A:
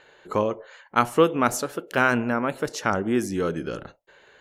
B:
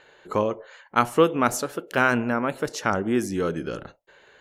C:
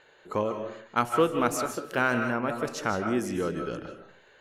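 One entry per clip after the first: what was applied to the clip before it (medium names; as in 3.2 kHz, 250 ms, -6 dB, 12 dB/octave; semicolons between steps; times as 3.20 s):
no audible change
in parallel at -11 dB: saturation -15.5 dBFS, distortion -11 dB; on the sum: algorithmic reverb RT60 0.52 s, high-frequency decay 0.6×, pre-delay 115 ms, DRR 6 dB; trim -6.5 dB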